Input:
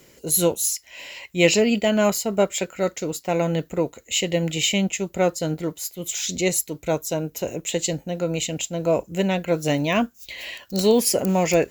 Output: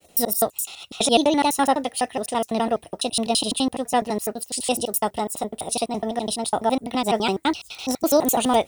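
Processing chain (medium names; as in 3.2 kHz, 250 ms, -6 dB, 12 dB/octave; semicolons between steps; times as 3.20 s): slices played last to first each 113 ms, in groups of 2; expander -49 dBFS; speed mistake 33 rpm record played at 45 rpm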